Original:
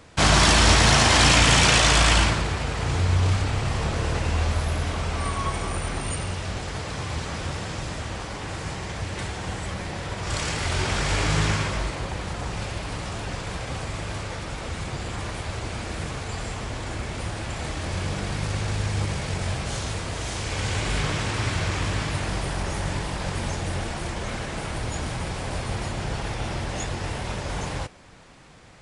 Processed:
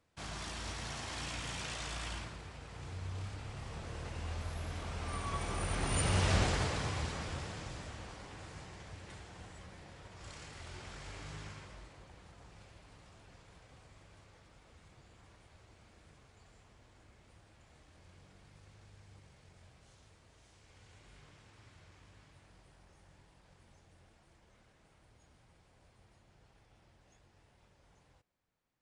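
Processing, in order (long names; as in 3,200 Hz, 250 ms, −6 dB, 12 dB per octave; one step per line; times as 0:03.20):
source passing by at 0:06.34, 8 m/s, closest 2 metres
level +1.5 dB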